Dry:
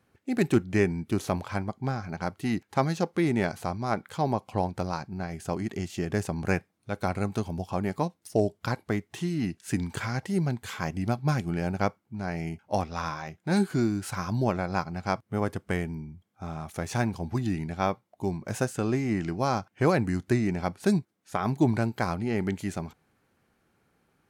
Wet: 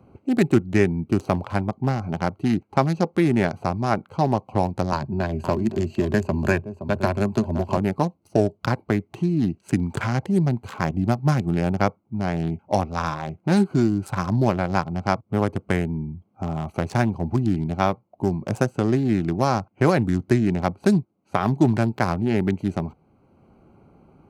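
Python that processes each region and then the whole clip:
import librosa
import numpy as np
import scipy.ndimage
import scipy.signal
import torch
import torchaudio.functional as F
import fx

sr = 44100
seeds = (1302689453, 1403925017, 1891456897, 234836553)

y = fx.chain(x, sr, fx.ripple_eq(per_octave=1.4, db=9),
    fx.echo_single(ms=518, db=-14.0),
    fx.band_squash(depth_pct=40), at=(4.92, 7.77))
y = fx.wiener(y, sr, points=25)
y = fx.notch(y, sr, hz=470.0, q=12.0)
y = fx.band_squash(y, sr, depth_pct=40)
y = F.gain(torch.from_numpy(y), 6.5).numpy()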